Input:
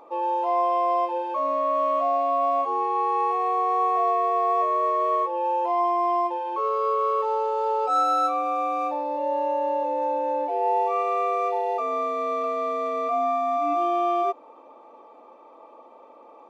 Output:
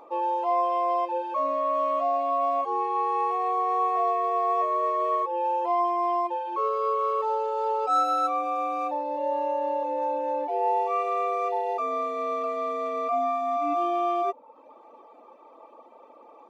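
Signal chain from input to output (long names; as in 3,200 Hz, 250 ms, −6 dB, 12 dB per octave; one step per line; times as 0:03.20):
reverb reduction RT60 0.68 s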